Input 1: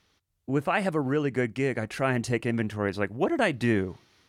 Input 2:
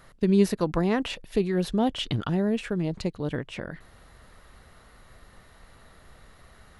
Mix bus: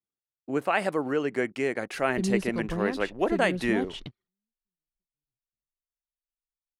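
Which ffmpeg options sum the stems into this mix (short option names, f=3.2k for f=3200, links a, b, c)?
-filter_complex "[0:a]highpass=340,volume=0.5dB,asplit=2[a][b];[1:a]acontrast=37,adelay=1950,volume=-15dB[c];[b]apad=whole_len=385751[d];[c][d]sidechaingate=range=-43dB:threshold=-55dB:ratio=16:detection=peak[e];[a][e]amix=inputs=2:normalize=0,lowshelf=f=220:g=6,anlmdn=0.00158"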